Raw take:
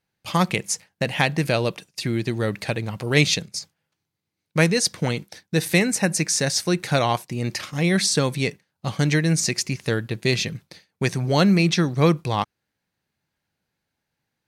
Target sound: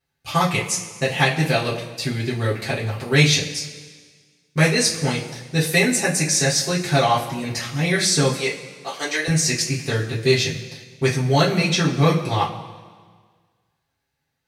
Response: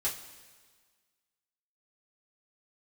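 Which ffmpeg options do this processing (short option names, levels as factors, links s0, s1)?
-filter_complex "[0:a]asettb=1/sr,asplit=3[s0][s1][s2];[s0]atrim=end=8.354[s3];[s1]atrim=start=8.35:end=9.28,asetpts=PTS-STARTPTS,afade=t=in:d=0.004:c=qsin,afade=t=out:st=0.926:d=0.004:c=qsin,highpass=f=400:w=0.5412,highpass=f=400:w=1.3066[s4];[s2]atrim=start=9.276[s5];[s3][s4]acrossfade=d=0.004:c1=hsin:c2=qsin[s6];[s6][s5]acrossfade=d=0.004:c1=qsin:c2=hsin[s7];[1:a]atrim=start_sample=2205[s8];[s7][s8]afir=irnorm=-1:irlink=0,volume=0.841"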